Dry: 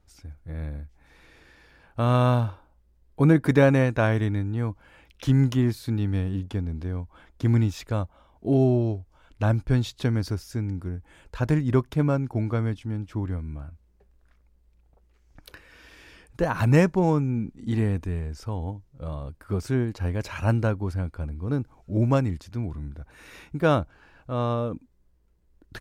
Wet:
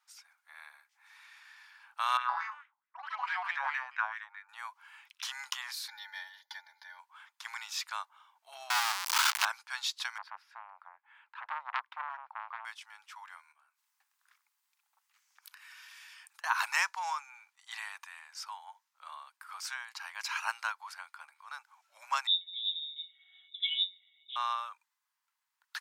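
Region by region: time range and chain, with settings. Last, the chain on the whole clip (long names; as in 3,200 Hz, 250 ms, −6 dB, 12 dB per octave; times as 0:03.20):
0:02.17–0:04.49: delay with pitch and tempo change per echo 115 ms, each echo +5 semitones, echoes 3, each echo −6 dB + LFO wah 4.6 Hz 740–2,000 Hz, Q 2.7
0:05.88–0:06.99: phaser with its sweep stopped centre 1,800 Hz, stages 8 + comb filter 3.4 ms, depth 94%
0:08.70–0:09.45: converter with a step at zero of −31 dBFS + leveller curve on the samples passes 3 + one half of a high-frequency compander encoder only
0:10.18–0:12.65: high-pass filter 54 Hz 24 dB per octave + high-frequency loss of the air 480 metres + saturating transformer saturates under 1,300 Hz
0:13.52–0:16.44: high-shelf EQ 4,400 Hz +8 dB + mains-hum notches 50/100/150/200/250/300/350/400 Hz + downward compressor 12 to 1, threshold −48 dBFS
0:22.27–0:24.36: resonances in every octave F#, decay 0.18 s + voice inversion scrambler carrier 3,700 Hz
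whole clip: Butterworth high-pass 910 Hz 48 dB per octave; dynamic equaliser 5,000 Hz, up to +5 dB, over −55 dBFS, Q 1.6; level +1 dB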